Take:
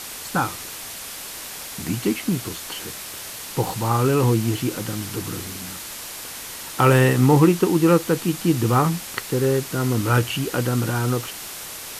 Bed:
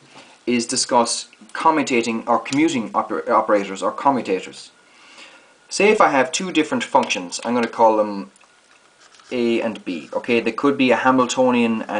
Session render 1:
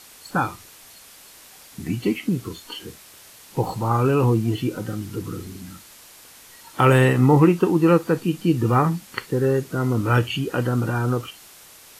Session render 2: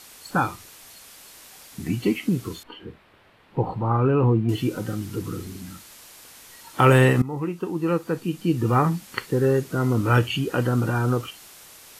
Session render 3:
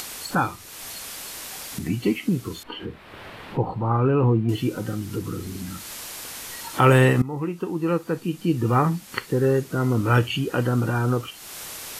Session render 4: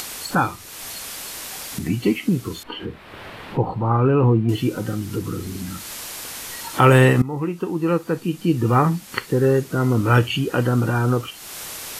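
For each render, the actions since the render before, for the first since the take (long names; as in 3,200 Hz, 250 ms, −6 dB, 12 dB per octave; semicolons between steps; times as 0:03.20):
noise reduction from a noise print 12 dB
0:02.63–0:04.49: high-frequency loss of the air 490 metres; 0:07.22–0:09.08: fade in linear, from −19 dB
upward compression, threshold −25 dBFS
level +3 dB; brickwall limiter −1 dBFS, peak gain reduction 1 dB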